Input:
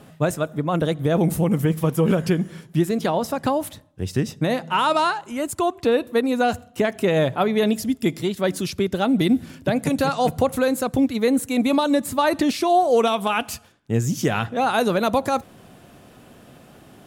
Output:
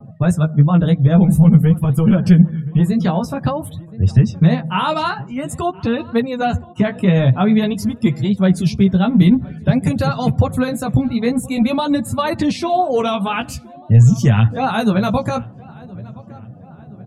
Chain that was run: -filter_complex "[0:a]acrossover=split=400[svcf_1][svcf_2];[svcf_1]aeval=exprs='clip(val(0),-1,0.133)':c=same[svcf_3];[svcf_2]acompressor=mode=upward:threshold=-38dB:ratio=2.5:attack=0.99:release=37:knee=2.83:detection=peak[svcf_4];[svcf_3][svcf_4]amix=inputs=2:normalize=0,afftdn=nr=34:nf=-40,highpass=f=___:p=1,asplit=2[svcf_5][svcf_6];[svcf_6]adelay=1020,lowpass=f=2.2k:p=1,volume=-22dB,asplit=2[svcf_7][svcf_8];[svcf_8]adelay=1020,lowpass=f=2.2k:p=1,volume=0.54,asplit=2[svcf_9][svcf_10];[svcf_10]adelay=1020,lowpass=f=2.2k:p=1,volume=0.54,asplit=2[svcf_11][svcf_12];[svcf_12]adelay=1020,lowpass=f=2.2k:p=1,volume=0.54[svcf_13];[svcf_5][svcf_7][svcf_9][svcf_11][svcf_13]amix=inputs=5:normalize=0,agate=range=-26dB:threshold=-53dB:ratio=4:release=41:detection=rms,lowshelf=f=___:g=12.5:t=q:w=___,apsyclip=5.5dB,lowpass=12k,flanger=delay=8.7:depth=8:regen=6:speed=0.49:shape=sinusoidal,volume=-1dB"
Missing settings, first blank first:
74, 230, 1.5